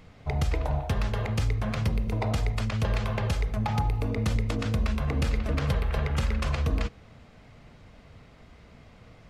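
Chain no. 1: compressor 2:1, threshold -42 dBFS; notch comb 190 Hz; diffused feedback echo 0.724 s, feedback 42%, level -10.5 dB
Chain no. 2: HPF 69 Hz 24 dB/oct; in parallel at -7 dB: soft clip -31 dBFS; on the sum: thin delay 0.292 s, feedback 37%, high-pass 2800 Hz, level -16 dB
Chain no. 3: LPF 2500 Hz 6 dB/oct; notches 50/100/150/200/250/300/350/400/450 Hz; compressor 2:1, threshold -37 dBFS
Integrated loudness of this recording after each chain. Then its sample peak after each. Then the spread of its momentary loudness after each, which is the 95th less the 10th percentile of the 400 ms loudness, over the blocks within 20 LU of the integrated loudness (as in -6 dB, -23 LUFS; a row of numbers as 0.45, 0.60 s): -38.5, -28.5, -36.5 LUFS; -24.5, -14.0, -23.5 dBFS; 14, 2, 18 LU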